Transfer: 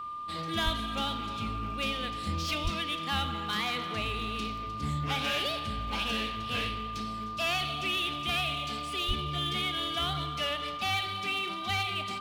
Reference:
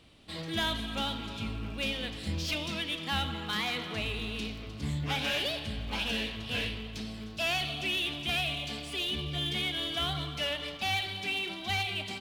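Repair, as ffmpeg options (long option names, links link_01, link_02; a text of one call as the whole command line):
ffmpeg -i in.wav -filter_complex "[0:a]bandreject=frequency=1200:width=30,asplit=3[link_01][link_02][link_03];[link_01]afade=type=out:start_time=0.64:duration=0.02[link_04];[link_02]highpass=frequency=140:width=0.5412,highpass=frequency=140:width=1.3066,afade=type=in:start_time=0.64:duration=0.02,afade=type=out:start_time=0.76:duration=0.02[link_05];[link_03]afade=type=in:start_time=0.76:duration=0.02[link_06];[link_04][link_05][link_06]amix=inputs=3:normalize=0,asplit=3[link_07][link_08][link_09];[link_07]afade=type=out:start_time=2.63:duration=0.02[link_10];[link_08]highpass=frequency=140:width=0.5412,highpass=frequency=140:width=1.3066,afade=type=in:start_time=2.63:duration=0.02,afade=type=out:start_time=2.75:duration=0.02[link_11];[link_09]afade=type=in:start_time=2.75:duration=0.02[link_12];[link_10][link_11][link_12]amix=inputs=3:normalize=0,asplit=3[link_13][link_14][link_15];[link_13]afade=type=out:start_time=9.07:duration=0.02[link_16];[link_14]highpass=frequency=140:width=0.5412,highpass=frequency=140:width=1.3066,afade=type=in:start_time=9.07:duration=0.02,afade=type=out:start_time=9.19:duration=0.02[link_17];[link_15]afade=type=in:start_time=9.19:duration=0.02[link_18];[link_16][link_17][link_18]amix=inputs=3:normalize=0" out.wav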